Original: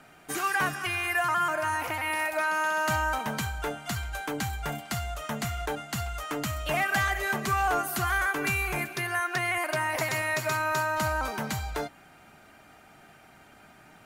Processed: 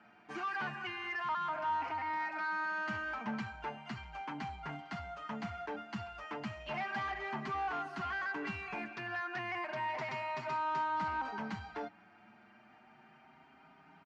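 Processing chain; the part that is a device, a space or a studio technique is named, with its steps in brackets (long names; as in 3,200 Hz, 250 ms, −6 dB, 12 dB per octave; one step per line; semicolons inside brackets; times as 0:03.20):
barber-pole flanger into a guitar amplifier (barber-pole flanger 6.5 ms +0.33 Hz; soft clipping −29 dBFS, distortion −13 dB; loudspeaker in its box 110–4,300 Hz, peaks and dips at 130 Hz −4 dB, 210 Hz +7 dB, 520 Hz −7 dB, 920 Hz +6 dB, 3,700 Hz −8 dB)
level −4.5 dB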